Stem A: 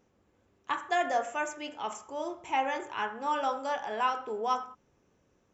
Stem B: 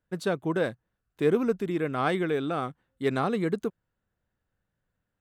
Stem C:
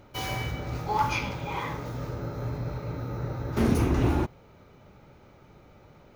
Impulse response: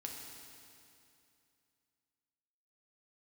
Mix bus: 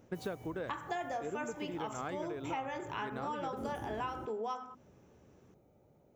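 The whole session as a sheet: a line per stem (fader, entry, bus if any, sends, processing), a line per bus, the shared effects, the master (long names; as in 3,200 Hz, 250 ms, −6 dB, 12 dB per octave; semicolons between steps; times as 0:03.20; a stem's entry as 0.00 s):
+2.0 dB, 0.00 s, no send, low-shelf EQ 290 Hz +11 dB; mains-hum notches 50/100/150/200/250 Hz
+3.0 dB, 0.00 s, no send, high-shelf EQ 5,500 Hz −11 dB; automatic ducking −9 dB, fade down 0.55 s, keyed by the first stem
−10.0 dB, 0.00 s, no send, flat-topped bell 2,300 Hz −13 dB 2.7 octaves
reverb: not used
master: high-pass filter 120 Hz 6 dB per octave; downward compressor 6 to 1, threshold −36 dBFS, peak gain reduction 15.5 dB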